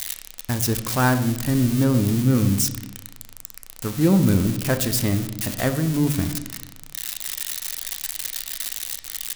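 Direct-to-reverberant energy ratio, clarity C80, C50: 7.0 dB, 13.5 dB, 11.0 dB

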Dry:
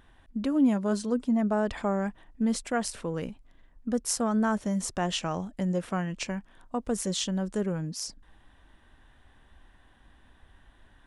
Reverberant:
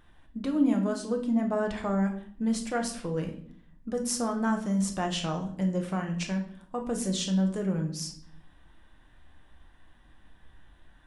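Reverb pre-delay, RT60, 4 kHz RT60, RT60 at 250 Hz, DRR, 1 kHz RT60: 6 ms, 0.60 s, 0.50 s, 0.90 s, 2.5 dB, 0.50 s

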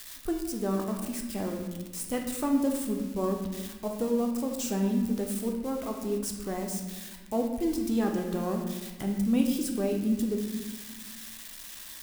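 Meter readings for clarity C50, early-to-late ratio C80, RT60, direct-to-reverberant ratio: 5.0 dB, 7.0 dB, 1.2 s, 2.0 dB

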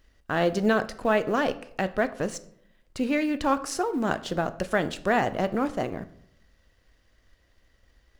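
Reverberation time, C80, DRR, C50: 0.70 s, 19.5 dB, 11.0 dB, 16.5 dB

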